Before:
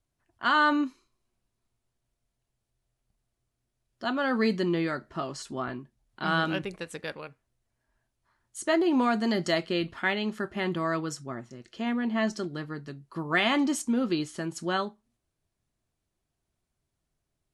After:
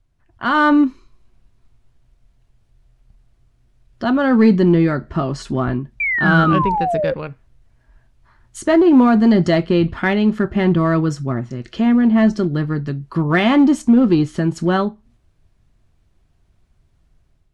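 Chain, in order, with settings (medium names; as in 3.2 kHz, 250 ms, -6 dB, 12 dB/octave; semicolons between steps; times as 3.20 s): RIAA curve playback; level rider gain up to 7 dB; in parallel at -10 dB: hard clipper -14.5 dBFS, distortion -11 dB; on the sum: painted sound fall, 6.00–7.14 s, 510–2400 Hz -19 dBFS; tape noise reduction on one side only encoder only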